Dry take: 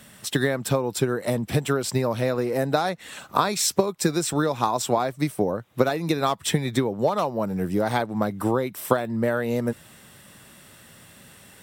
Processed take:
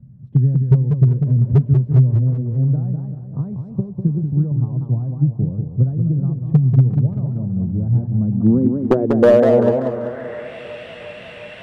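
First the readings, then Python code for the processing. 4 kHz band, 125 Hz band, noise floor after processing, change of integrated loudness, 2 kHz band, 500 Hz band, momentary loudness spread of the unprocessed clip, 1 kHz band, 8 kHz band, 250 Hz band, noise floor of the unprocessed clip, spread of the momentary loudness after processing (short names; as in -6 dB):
under -10 dB, +15.5 dB, -37 dBFS, +7.5 dB, n/a, +4.5 dB, 4 LU, -7.5 dB, under -25 dB, +7.0 dB, -50 dBFS, 15 LU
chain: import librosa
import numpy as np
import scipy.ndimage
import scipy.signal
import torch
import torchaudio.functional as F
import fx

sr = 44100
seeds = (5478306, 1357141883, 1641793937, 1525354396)

p1 = fx.filter_sweep_lowpass(x, sr, from_hz=130.0, to_hz=2600.0, start_s=8.1, end_s=10.58, q=3.3)
p2 = np.clip(p1, -10.0 ** (-12.5 / 20.0), 10.0 ** (-12.5 / 20.0))
p3 = p2 + fx.echo_banded(p2, sr, ms=356, feedback_pct=83, hz=760.0, wet_db=-16.5, dry=0)
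p4 = fx.echo_warbled(p3, sr, ms=193, feedback_pct=48, rate_hz=2.8, cents=169, wet_db=-6.0)
y = p4 * librosa.db_to_amplitude(7.0)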